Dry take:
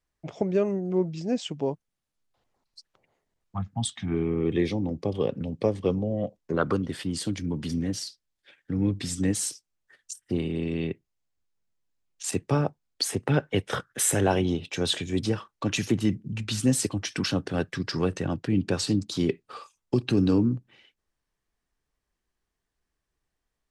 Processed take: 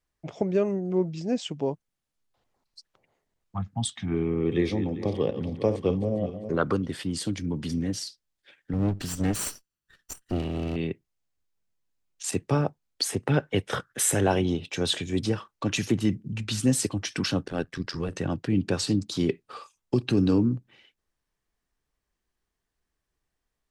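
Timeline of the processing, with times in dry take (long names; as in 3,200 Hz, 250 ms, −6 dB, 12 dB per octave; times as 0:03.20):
0:04.30–0:06.56: feedback delay that plays each chunk backwards 200 ms, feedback 56%, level −10.5 dB
0:08.73–0:10.76: lower of the sound and its delayed copy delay 0.68 ms
0:17.43–0:18.13: amplitude modulation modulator 84 Hz, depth 65%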